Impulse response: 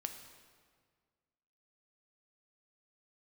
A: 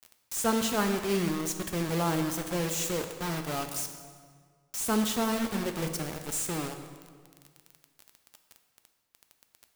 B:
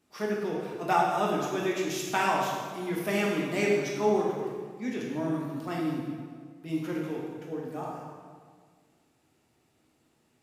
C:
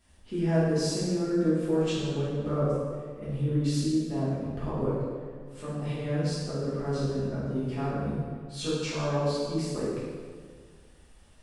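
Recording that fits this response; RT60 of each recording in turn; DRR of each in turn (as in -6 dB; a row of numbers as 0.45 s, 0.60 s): A; 1.8 s, 1.8 s, 1.8 s; 5.5 dB, -4.0 dB, -11.0 dB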